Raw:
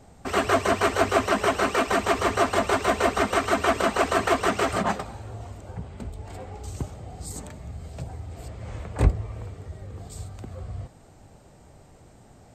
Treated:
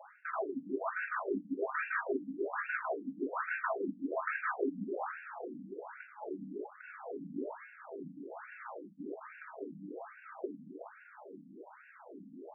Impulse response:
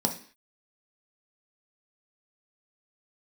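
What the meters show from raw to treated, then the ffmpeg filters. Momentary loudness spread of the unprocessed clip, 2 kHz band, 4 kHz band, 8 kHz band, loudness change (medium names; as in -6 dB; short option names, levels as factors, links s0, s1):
17 LU, -10.0 dB, under -40 dB, under -40 dB, -15.5 dB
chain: -filter_complex "[0:a]bandreject=f=145.4:t=h:w=4,bandreject=f=290.8:t=h:w=4,bandreject=f=436.2:t=h:w=4,bandreject=f=581.6:t=h:w=4,bandreject=f=727:t=h:w=4,bandreject=f=872.4:t=h:w=4,areverse,acompressor=threshold=0.0178:ratio=10,areverse,aresample=11025,aresample=44100,asoftclip=type=hard:threshold=0.0168,crystalizer=i=8:c=0[s0];[1:a]atrim=start_sample=2205,asetrate=74970,aresample=44100[s1];[s0][s1]afir=irnorm=-1:irlink=0,afftfilt=real='re*between(b*sr/1024,200*pow(2000/200,0.5+0.5*sin(2*PI*1.2*pts/sr))/1.41,200*pow(2000/200,0.5+0.5*sin(2*PI*1.2*pts/sr))*1.41)':imag='im*between(b*sr/1024,200*pow(2000/200,0.5+0.5*sin(2*PI*1.2*pts/sr))/1.41,200*pow(2000/200,0.5+0.5*sin(2*PI*1.2*pts/sr))*1.41)':win_size=1024:overlap=0.75,volume=0.841"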